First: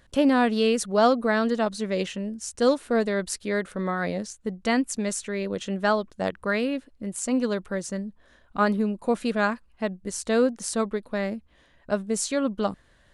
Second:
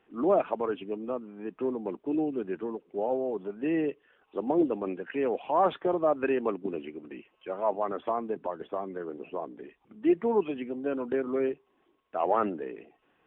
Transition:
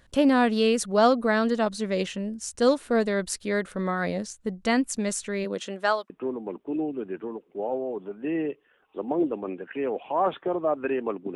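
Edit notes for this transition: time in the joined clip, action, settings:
first
5.44–6.1 HPF 160 Hz -> 850 Hz
6.1 switch to second from 1.49 s

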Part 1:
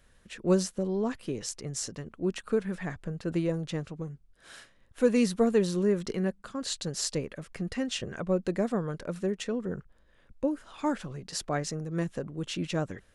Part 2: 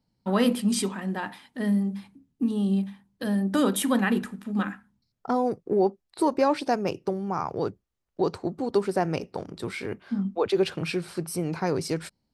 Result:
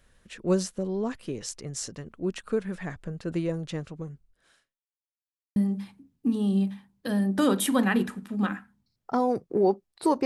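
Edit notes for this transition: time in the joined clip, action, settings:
part 1
4.14–4.82 fade out quadratic
4.82–5.56 mute
5.56 switch to part 2 from 1.72 s

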